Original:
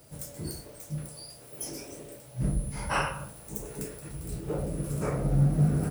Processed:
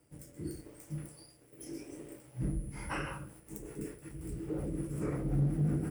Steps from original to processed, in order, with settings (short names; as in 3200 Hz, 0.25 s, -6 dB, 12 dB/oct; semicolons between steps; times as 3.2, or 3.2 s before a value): rotary speaker horn 0.8 Hz, later 5.5 Hz, at 2.41; thirty-one-band EQ 315 Hz +10 dB, 630 Hz -6 dB, 2000 Hz +4 dB, 4000 Hz -11 dB, 6300 Hz -5 dB, 12500 Hz -6 dB; sample leveller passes 1; gain -8.5 dB